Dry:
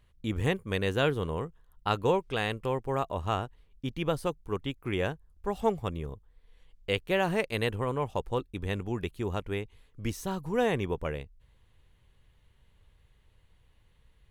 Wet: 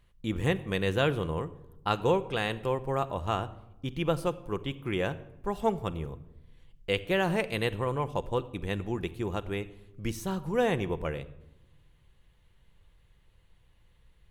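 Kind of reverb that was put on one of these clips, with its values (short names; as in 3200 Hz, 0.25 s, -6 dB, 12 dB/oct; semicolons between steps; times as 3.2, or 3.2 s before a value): shoebox room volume 3800 m³, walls furnished, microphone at 0.8 m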